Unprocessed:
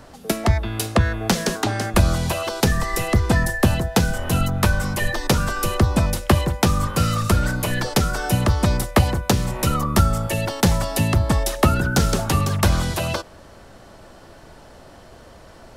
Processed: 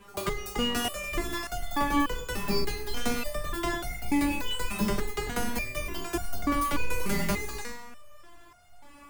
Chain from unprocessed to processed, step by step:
sub-octave generator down 2 octaves, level 0 dB
gain into a clipping stage and back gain 12 dB
four-comb reverb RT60 1.4 s, combs from 32 ms, DRR 6 dB
wrong playback speed 45 rpm record played at 78 rpm
step-sequenced resonator 3.4 Hz 200–710 Hz
level +4.5 dB

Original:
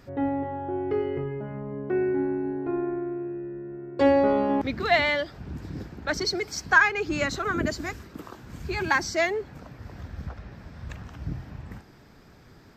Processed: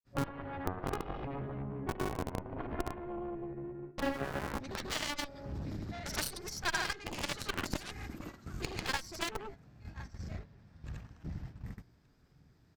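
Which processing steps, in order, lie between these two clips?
hum removal 84.39 Hz, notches 28
on a send: repeating echo 1,078 ms, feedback 20%, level −19.5 dB
on the sum: granular cloud 100 ms, grains 27 per second, pitch spread up and down by 0 semitones
in parallel at −4.5 dB: comparator with hysteresis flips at −23 dBFS
on the sum: speech leveller within 3 dB 0.5 s
harmonic generator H 2 −8 dB, 4 −10 dB, 5 −36 dB, 7 −13 dB, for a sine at −11 dBFS
bass and treble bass +6 dB, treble +4 dB
noise gate −43 dBFS, range −10 dB
downward compressor 2.5 to 1, threshold −35 dBFS, peak gain reduction 13 dB

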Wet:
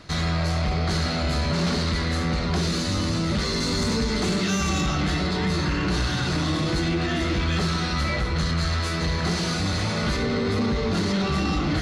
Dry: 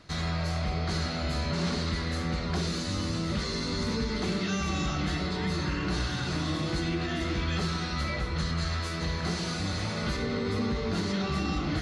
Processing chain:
0:03.60–0:04.81: parametric band 8,100 Hz +8 dB 0.72 octaves
soft clipping −25 dBFS, distortion −17 dB
level +8 dB

